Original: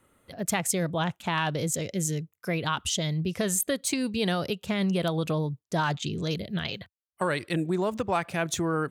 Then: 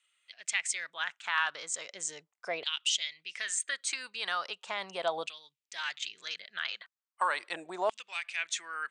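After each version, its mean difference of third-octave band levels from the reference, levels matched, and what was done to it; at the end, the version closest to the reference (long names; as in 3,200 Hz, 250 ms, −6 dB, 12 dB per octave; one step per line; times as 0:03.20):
12.0 dB: Butterworth low-pass 8,900 Hz 72 dB per octave
auto-filter high-pass saw down 0.38 Hz 690–3,000 Hz
level −4 dB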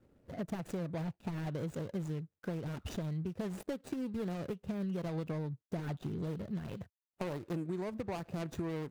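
6.5 dB: running median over 41 samples
downward compressor 4 to 1, threshold −38 dBFS, peak gain reduction 12 dB
level +1.5 dB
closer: second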